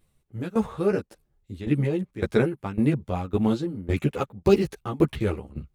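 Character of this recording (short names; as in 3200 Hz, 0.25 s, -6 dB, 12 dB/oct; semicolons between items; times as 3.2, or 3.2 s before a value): tremolo saw down 1.8 Hz, depth 90%; a shimmering, thickened sound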